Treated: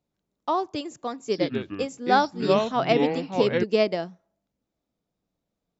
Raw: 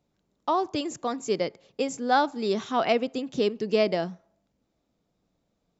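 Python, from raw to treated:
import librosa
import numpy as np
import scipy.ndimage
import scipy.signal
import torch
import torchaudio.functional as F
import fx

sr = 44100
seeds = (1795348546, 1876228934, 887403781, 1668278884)

y = fx.echo_pitch(x, sr, ms=86, semitones=-5, count=2, db_per_echo=-3.0, at=(1.23, 3.64))
y = fx.upward_expand(y, sr, threshold_db=-37.0, expansion=1.5)
y = y * 10.0 ** (2.5 / 20.0)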